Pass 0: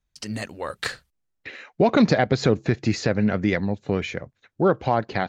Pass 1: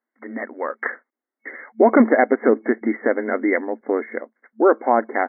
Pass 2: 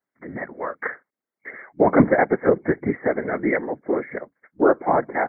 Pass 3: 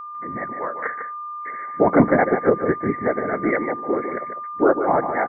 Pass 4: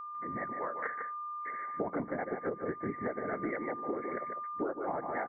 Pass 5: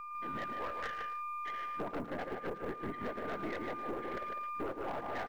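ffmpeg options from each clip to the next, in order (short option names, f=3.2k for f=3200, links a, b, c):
-af "afftfilt=real='re*between(b*sr/4096,220,2200)':imag='im*between(b*sr/4096,220,2200)':win_size=4096:overlap=0.75,volume=5dB"
-af "afftfilt=real='hypot(re,im)*cos(2*PI*random(0))':imag='hypot(re,im)*sin(2*PI*random(1))':win_size=512:overlap=0.75,volume=4dB"
-af "aeval=exprs='val(0)+0.0251*sin(2*PI*1200*n/s)':c=same,aecho=1:1:150:0.398"
-af "acompressor=threshold=-23dB:ratio=16,volume=-8dB"
-filter_complex "[0:a]aeval=exprs='(tanh(56.2*val(0)+0.65)-tanh(0.65))/56.2':c=same,asplit=2[a][b];[b]adelay=110,highpass=300,lowpass=3.4k,asoftclip=type=hard:threshold=-39.5dB,volume=-11dB[c];[a][c]amix=inputs=2:normalize=0,acrusher=bits=9:mode=log:mix=0:aa=0.000001,volume=1dB"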